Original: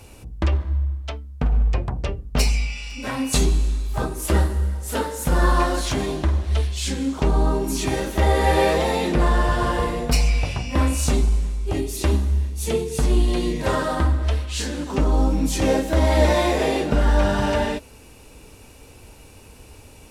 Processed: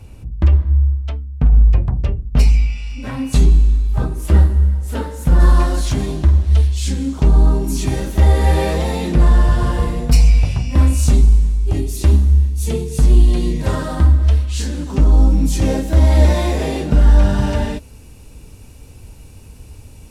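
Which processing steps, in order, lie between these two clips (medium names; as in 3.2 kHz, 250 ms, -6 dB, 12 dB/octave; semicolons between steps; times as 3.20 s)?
tone controls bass +12 dB, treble -4 dB, from 5.39 s treble +4 dB; trim -3 dB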